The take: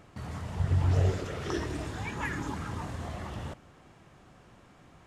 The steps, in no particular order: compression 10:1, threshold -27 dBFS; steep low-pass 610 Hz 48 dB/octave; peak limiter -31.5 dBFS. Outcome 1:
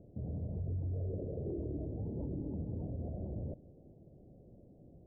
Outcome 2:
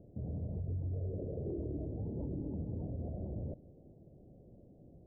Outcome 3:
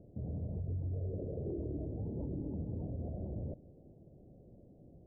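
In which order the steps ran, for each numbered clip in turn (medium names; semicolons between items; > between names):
steep low-pass > peak limiter > compression; steep low-pass > compression > peak limiter; compression > steep low-pass > peak limiter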